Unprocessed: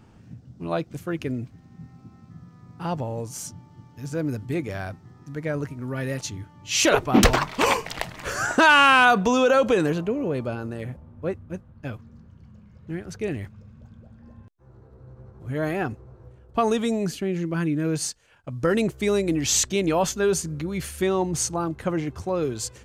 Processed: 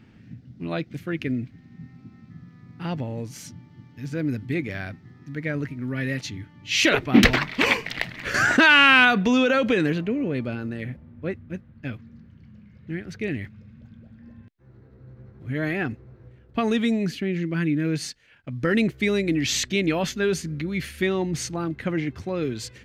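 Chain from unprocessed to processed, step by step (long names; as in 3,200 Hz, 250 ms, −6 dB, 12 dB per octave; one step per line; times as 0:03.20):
graphic EQ with 10 bands 125 Hz +4 dB, 250 Hz +8 dB, 1,000 Hz −5 dB, 2,000 Hz +12 dB, 4,000 Hz +6 dB, 8,000 Hz −6 dB
0:08.34–0:09.05: envelope flattener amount 50%
level −5 dB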